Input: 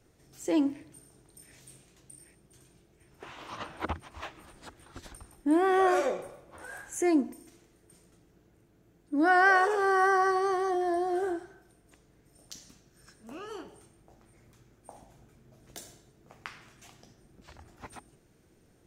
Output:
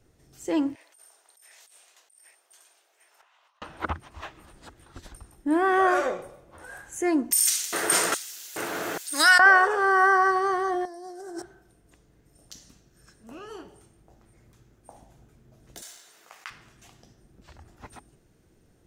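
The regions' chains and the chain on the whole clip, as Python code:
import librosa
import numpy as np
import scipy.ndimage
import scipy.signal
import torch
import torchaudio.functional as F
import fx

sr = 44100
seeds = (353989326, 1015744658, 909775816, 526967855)

y = fx.chain(x, sr, fx.highpass(hz=660.0, slope=24),
    fx.over_compress(threshold_db=-59.0, ratio=-1.0), at=(0.75, 3.62))
y = fx.chain(y, sr, fx.filter_lfo_highpass(shape='square', hz=1.2, low_hz=610.0, high_hz=4800.0, q=0.76),
    fx.env_flatten(amount_pct=100), at=(7.31, 9.46))
y = fx.chain(y, sr, fx.highpass(hz=130.0, slope=24),
    fx.high_shelf_res(hz=4100.0, db=8.5, q=3.0),
    fx.over_compress(threshold_db=-40.0, ratio=-1.0), at=(10.85, 11.42))
y = fx.chain(y, sr, fx.highpass(hz=1200.0, slope=12),
    fx.leveller(passes=1),
    fx.env_flatten(amount_pct=50), at=(15.82, 16.5))
y = fx.low_shelf(y, sr, hz=90.0, db=6.0)
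y = fx.notch(y, sr, hz=2300.0, q=26.0)
y = fx.dynamic_eq(y, sr, hz=1400.0, q=1.1, threshold_db=-42.0, ratio=4.0, max_db=8)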